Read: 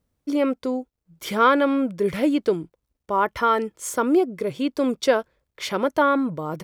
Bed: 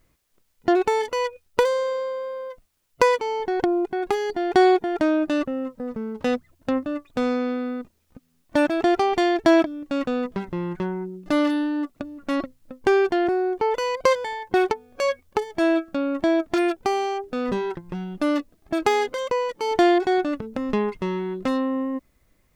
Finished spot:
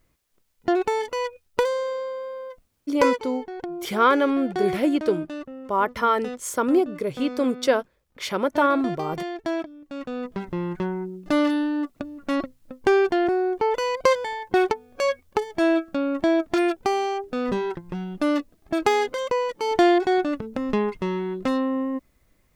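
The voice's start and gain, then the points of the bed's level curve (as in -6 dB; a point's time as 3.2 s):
2.60 s, -1.0 dB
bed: 3.09 s -2.5 dB
3.29 s -11 dB
9.86 s -11 dB
10.51 s 0 dB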